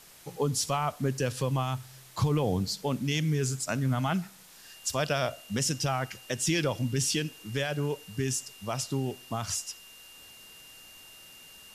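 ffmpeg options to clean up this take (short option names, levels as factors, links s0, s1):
-af "bandreject=f=2800:w=30,afwtdn=0.0025"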